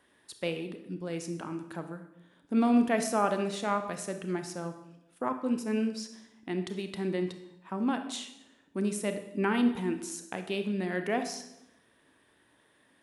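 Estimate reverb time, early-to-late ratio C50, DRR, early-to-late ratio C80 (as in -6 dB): 0.85 s, 9.5 dB, 7.5 dB, 12.0 dB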